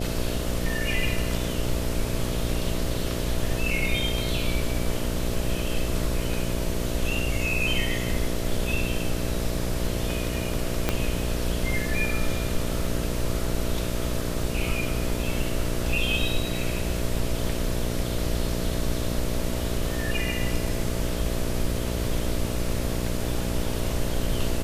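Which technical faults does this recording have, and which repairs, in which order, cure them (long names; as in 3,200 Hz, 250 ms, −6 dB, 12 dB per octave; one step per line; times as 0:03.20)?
mains buzz 60 Hz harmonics 11 −30 dBFS
0:10.89: click −7 dBFS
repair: click removal
hum removal 60 Hz, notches 11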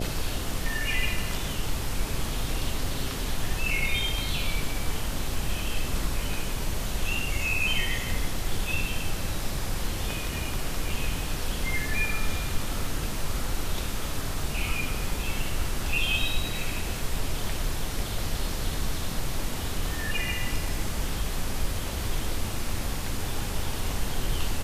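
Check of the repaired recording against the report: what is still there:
0:10.89: click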